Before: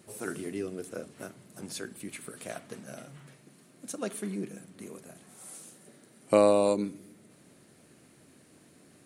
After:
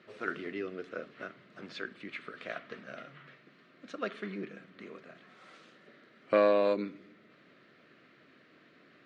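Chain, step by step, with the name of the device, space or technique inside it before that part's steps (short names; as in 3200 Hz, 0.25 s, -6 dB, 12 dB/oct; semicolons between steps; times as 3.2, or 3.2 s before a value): overdrive pedal into a guitar cabinet (overdrive pedal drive 11 dB, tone 4900 Hz, clips at -9.5 dBFS; speaker cabinet 110–3900 Hz, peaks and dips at 850 Hz -10 dB, 1300 Hz +5 dB, 1900 Hz +4 dB); gain -3.5 dB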